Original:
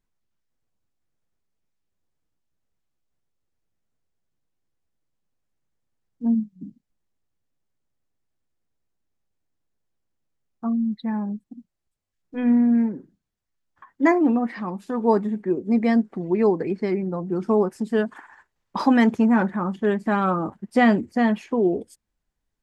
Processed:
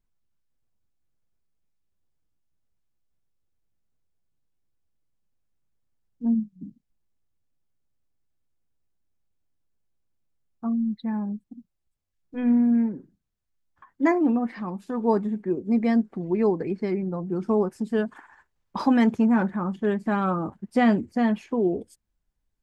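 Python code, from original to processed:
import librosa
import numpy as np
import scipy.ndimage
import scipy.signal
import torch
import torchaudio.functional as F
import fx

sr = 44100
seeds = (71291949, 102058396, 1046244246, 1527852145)

y = fx.low_shelf(x, sr, hz=140.0, db=7.5)
y = fx.notch(y, sr, hz=1900.0, q=26.0)
y = y * 10.0 ** (-4.0 / 20.0)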